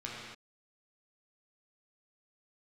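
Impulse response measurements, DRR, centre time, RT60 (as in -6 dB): -5.5 dB, 90 ms, not exponential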